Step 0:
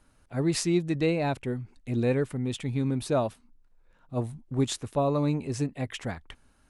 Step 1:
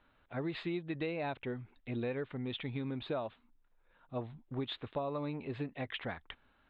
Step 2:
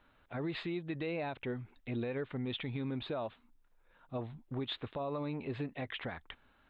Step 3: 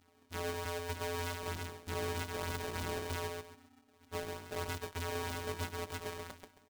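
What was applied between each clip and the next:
elliptic low-pass 3700 Hz, stop band 40 dB; low shelf 310 Hz -9.5 dB; compressor 5:1, threshold -34 dBFS, peak gain reduction 9.5 dB
limiter -31.5 dBFS, peak gain reduction 7 dB; gain +2 dB
sample sorter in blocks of 256 samples; on a send: feedback echo 0.135 s, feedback 27%, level -3.5 dB; on the sum: polarity switched at an audio rate 260 Hz; gain -1.5 dB

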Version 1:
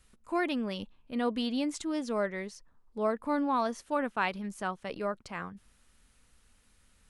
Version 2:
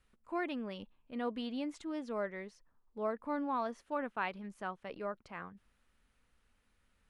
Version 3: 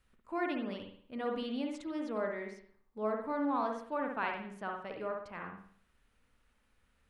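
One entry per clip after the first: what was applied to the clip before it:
tone controls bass -3 dB, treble -11 dB; gain -6 dB
reverb, pre-delay 56 ms, DRR 2 dB

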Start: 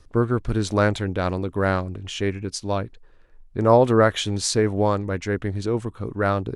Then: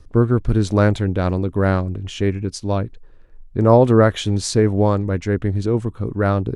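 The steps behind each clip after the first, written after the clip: low shelf 460 Hz +8.5 dB; gain -1 dB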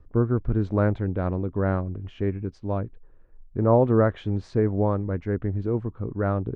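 LPF 1600 Hz 12 dB/oct; gain -6.5 dB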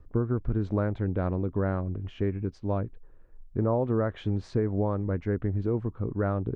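compressor, threshold -22 dBFS, peak gain reduction 9 dB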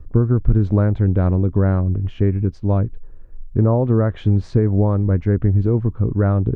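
low shelf 220 Hz +10.5 dB; gain +5 dB

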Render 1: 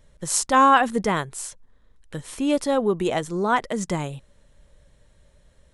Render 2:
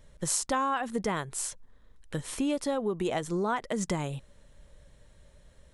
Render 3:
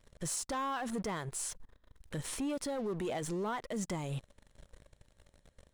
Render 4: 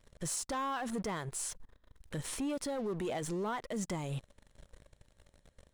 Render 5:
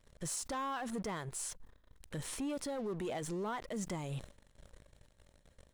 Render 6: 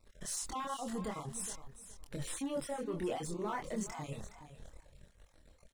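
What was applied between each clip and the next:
compressor 8:1, threshold -26 dBFS, peak gain reduction 14.5 dB
sample leveller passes 3; limiter -23 dBFS, peak gain reduction 11 dB; gain -7.5 dB
nothing audible
sustainer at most 140 dB/s; gain -2.5 dB
random spectral dropouts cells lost 30%; feedback echo 0.417 s, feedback 20%, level -13 dB; chorus voices 6, 0.36 Hz, delay 25 ms, depth 3.2 ms; gain +4.5 dB

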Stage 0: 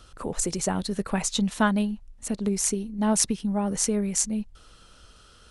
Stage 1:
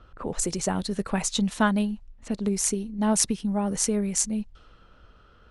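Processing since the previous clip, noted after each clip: low-pass opened by the level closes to 1700 Hz, open at -23 dBFS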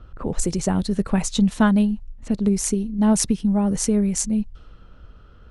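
low shelf 310 Hz +10.5 dB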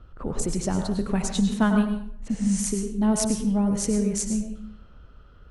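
spectral repair 2.33–2.59, 320–10000 Hz both; plate-style reverb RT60 0.64 s, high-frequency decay 0.65×, pre-delay 85 ms, DRR 4.5 dB; gain -4.5 dB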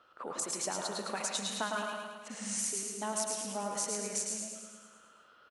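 HPF 690 Hz 12 dB/oct; compressor, threshold -32 dBFS, peak gain reduction 10 dB; on a send: feedback echo 0.108 s, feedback 58%, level -4.5 dB

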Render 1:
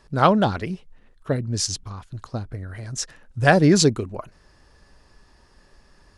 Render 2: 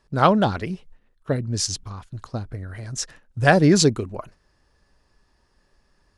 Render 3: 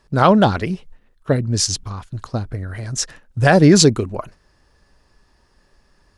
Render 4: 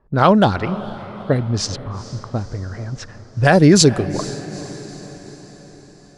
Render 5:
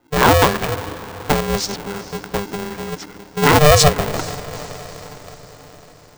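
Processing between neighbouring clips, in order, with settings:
gate -44 dBFS, range -9 dB
maximiser +7 dB; gain -1 dB
low-pass opened by the level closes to 1000 Hz, open at -9.5 dBFS; diffused feedback echo 0.45 s, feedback 56%, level -15.5 dB
polarity switched at an audio rate 300 Hz

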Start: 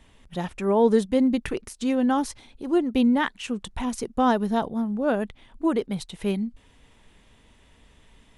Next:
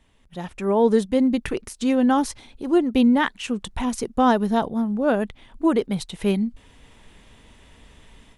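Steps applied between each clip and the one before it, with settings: AGC gain up to 12 dB; gain -6 dB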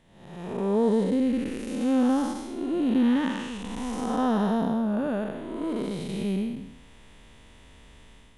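time blur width 0.347 s

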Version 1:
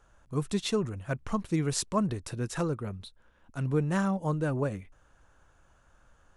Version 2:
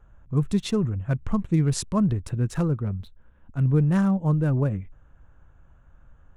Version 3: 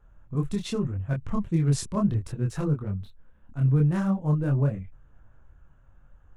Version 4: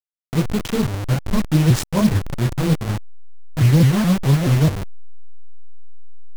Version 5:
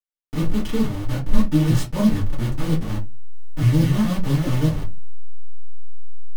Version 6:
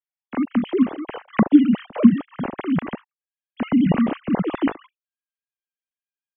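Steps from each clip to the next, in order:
Wiener smoothing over 9 samples; tone controls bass +11 dB, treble +1 dB
chorus voices 4, 0.7 Hz, delay 25 ms, depth 4.9 ms
level-crossing sampler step -27.5 dBFS; shaped vibrato saw up 4.7 Hz, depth 250 cents; gain +8.5 dB
reverb RT60 0.20 s, pre-delay 3 ms, DRR -5 dB; gain -12 dB
sine-wave speech; gain -5 dB

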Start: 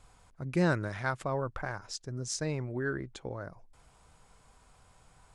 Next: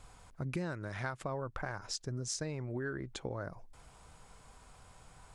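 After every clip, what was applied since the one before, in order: compressor 8:1, threshold -38 dBFS, peak gain reduction 16 dB; gain +3.5 dB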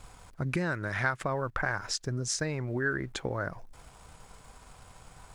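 in parallel at -10 dB: sample gate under -53.5 dBFS; on the sum: dynamic EQ 1700 Hz, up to +7 dB, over -54 dBFS, Q 1.4; gain +3.5 dB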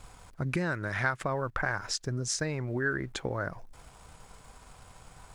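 nothing audible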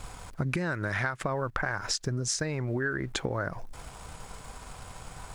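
compressor, threshold -35 dBFS, peak gain reduction 11.5 dB; gain +8 dB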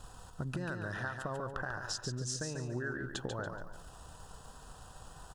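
Butterworth band-stop 2200 Hz, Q 2.9; on a send: feedback echo 0.142 s, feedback 32%, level -6 dB; on the sum: gain -8.5 dB

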